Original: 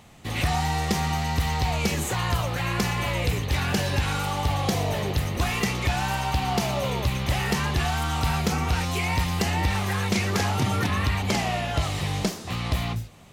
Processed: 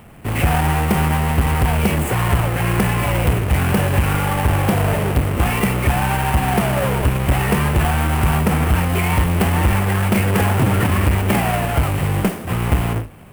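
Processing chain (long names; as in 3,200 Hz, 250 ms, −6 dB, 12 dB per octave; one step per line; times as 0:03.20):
each half-wave held at its own peak
flat-topped bell 5,000 Hz −12 dB 1.2 octaves
level +3.5 dB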